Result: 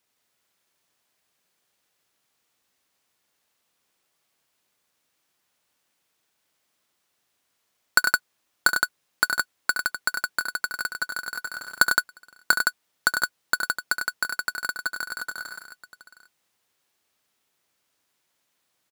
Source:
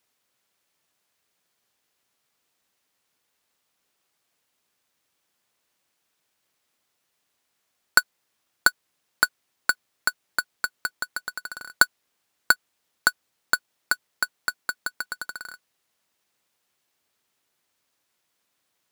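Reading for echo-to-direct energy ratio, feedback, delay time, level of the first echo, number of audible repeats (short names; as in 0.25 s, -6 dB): -0.5 dB, no steady repeat, 69 ms, -9.5 dB, 4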